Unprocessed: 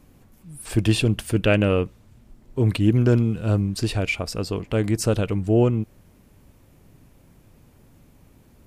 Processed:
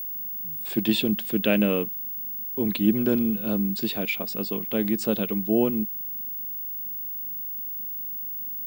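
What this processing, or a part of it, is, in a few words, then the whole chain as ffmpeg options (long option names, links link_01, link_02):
old television with a line whistle: -af "highpass=frequency=180:width=0.5412,highpass=frequency=180:width=1.3066,equalizer=frequency=210:width_type=q:width=4:gain=8,equalizer=frequency=1300:width_type=q:width=4:gain=-4,equalizer=frequency=3600:width_type=q:width=4:gain=8,equalizer=frequency=6200:width_type=q:width=4:gain=-7,lowpass=frequency=8300:width=0.5412,lowpass=frequency=8300:width=1.3066,aeval=exprs='val(0)+0.0501*sin(2*PI*15625*n/s)':channel_layout=same,volume=-4dB"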